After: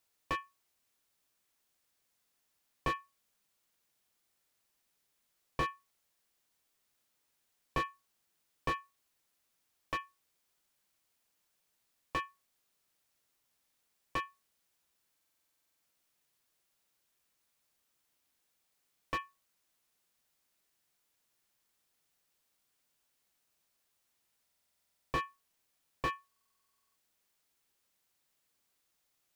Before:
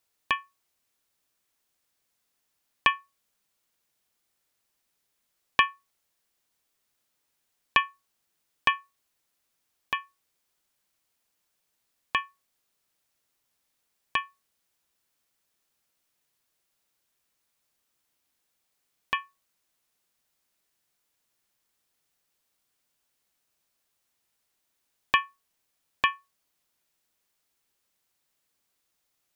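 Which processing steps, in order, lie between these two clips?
stuck buffer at 15.12/24.43/26.27, samples 2048, times 14; slew limiter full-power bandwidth 49 Hz; gain -1.5 dB

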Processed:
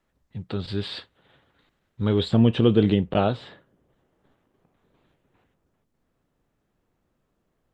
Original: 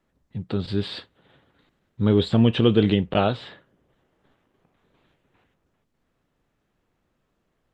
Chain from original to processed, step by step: bell 230 Hz -4.5 dB 2.4 oct, from 2.31 s 2700 Hz

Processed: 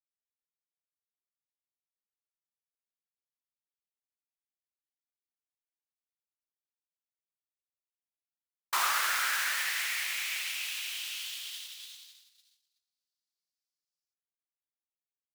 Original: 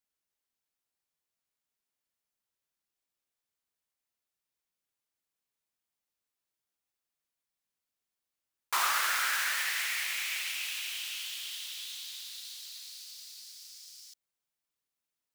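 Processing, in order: gate -40 dBFS, range -45 dB

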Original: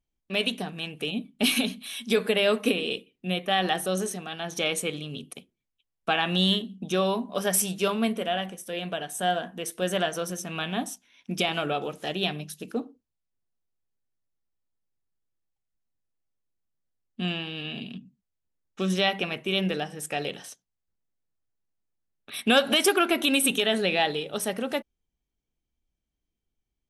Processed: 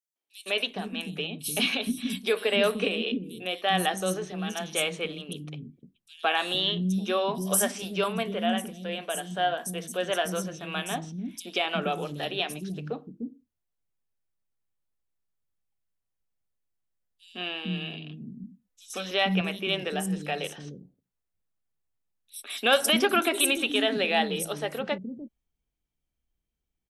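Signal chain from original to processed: 17.97–18.95 comb 4 ms, depth 75%; three bands offset in time highs, mids, lows 0.16/0.46 s, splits 300/5100 Hz

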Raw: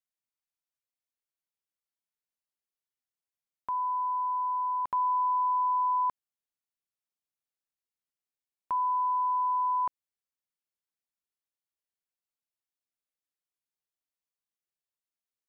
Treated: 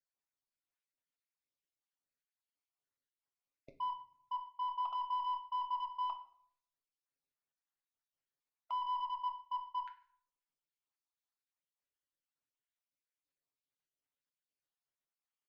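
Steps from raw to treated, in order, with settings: random spectral dropouts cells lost 57%; comb 7.4 ms, depth 49%; limiter -29 dBFS, peak gain reduction 6 dB; added harmonics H 2 -34 dB, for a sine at -29 dBFS; soft clip -33.5 dBFS, distortion -16 dB; air absorption 73 m; reverb RT60 0.65 s, pre-delay 7 ms, DRR 5.5 dB

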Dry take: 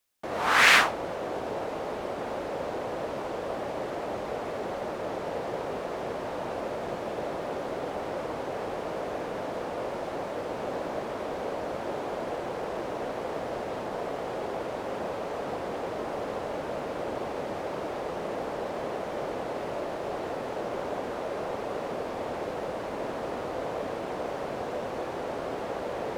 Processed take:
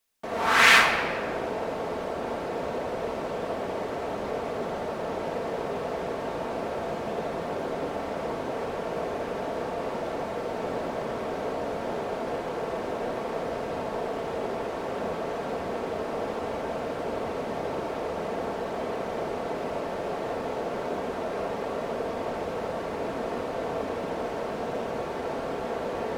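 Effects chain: shoebox room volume 3700 m³, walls mixed, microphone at 1.6 m

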